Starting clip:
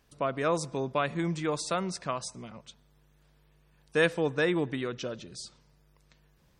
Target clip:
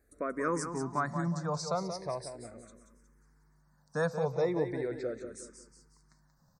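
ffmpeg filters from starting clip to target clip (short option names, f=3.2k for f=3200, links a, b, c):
-filter_complex "[0:a]asuperstop=centerf=3000:order=4:qfactor=1.1,aecho=1:1:182|364|546|728:0.376|0.147|0.0572|0.0223,asplit=2[a][b];[b]afreqshift=-0.39[c];[a][c]amix=inputs=2:normalize=1"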